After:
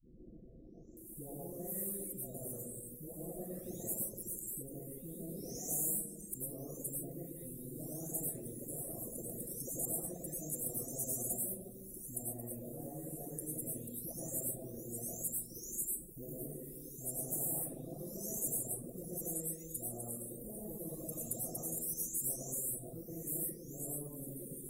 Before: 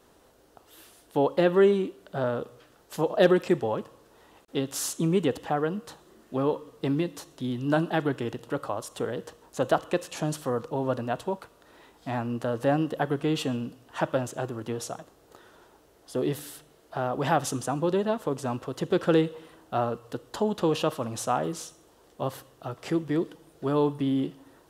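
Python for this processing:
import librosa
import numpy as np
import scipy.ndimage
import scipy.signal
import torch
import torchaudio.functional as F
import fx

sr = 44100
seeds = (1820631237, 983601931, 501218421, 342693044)

p1 = fx.spec_delay(x, sr, highs='late', ms=971)
p2 = scipy.signal.sosfilt(scipy.signal.cheby2(4, 50, [880.0, 4800.0], 'bandstop', fs=sr, output='sos'), p1)
p3 = fx.tone_stack(p2, sr, knobs='5-5-5')
p4 = fx.rev_freeverb(p3, sr, rt60_s=1.2, hf_ratio=0.4, predelay_ms=65, drr_db=-9.0)
p5 = fx.rider(p4, sr, range_db=5, speed_s=2.0)
p6 = p4 + (p5 * 10.0 ** (-2.0 / 20.0))
p7 = fx.dereverb_blind(p6, sr, rt60_s=0.89)
y = fx.spectral_comp(p7, sr, ratio=4.0)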